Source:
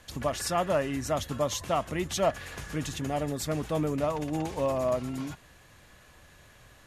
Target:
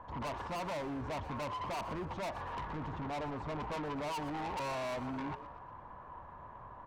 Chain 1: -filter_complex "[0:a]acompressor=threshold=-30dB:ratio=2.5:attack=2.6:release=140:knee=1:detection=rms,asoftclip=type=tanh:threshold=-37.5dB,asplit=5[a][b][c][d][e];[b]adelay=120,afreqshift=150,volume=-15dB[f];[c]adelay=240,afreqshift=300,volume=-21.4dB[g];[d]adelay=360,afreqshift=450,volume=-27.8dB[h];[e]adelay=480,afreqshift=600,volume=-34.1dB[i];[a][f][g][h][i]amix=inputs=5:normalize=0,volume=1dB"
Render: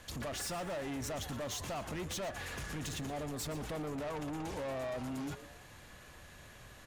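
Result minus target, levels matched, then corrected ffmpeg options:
1000 Hz band -6.0 dB
-filter_complex "[0:a]acompressor=threshold=-30dB:ratio=2.5:attack=2.6:release=140:knee=1:detection=rms,lowpass=f=970:t=q:w=10,asoftclip=type=tanh:threshold=-37.5dB,asplit=5[a][b][c][d][e];[b]adelay=120,afreqshift=150,volume=-15dB[f];[c]adelay=240,afreqshift=300,volume=-21.4dB[g];[d]adelay=360,afreqshift=450,volume=-27.8dB[h];[e]adelay=480,afreqshift=600,volume=-34.1dB[i];[a][f][g][h][i]amix=inputs=5:normalize=0,volume=1dB"

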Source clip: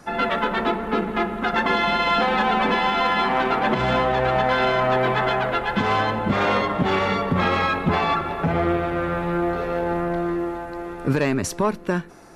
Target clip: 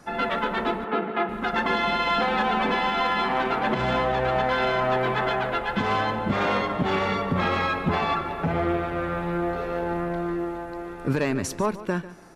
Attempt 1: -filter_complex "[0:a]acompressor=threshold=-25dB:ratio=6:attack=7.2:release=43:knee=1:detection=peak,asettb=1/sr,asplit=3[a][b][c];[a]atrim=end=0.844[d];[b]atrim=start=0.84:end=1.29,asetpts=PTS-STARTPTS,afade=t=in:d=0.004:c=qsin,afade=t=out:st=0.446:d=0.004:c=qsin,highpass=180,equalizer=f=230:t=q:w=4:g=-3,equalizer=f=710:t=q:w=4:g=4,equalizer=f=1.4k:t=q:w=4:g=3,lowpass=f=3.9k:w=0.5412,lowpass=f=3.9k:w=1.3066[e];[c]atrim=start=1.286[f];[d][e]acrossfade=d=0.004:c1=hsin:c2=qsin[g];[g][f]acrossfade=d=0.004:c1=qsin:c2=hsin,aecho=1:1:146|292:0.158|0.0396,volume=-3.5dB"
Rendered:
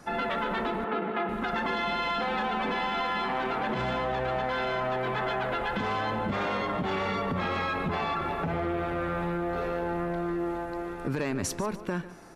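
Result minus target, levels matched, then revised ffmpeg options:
compressor: peak gain reduction +9.5 dB
-filter_complex "[0:a]asettb=1/sr,asplit=3[a][b][c];[a]atrim=end=0.844[d];[b]atrim=start=0.84:end=1.29,asetpts=PTS-STARTPTS,afade=t=in:d=0.004:c=qsin,afade=t=out:st=0.446:d=0.004:c=qsin,highpass=180,equalizer=f=230:t=q:w=4:g=-3,equalizer=f=710:t=q:w=4:g=4,equalizer=f=1.4k:t=q:w=4:g=3,lowpass=f=3.9k:w=0.5412,lowpass=f=3.9k:w=1.3066[e];[c]atrim=start=1.286[f];[d][e]acrossfade=d=0.004:c1=hsin:c2=qsin[g];[g][f]acrossfade=d=0.004:c1=qsin:c2=hsin,aecho=1:1:146|292:0.158|0.0396,volume=-3.5dB"

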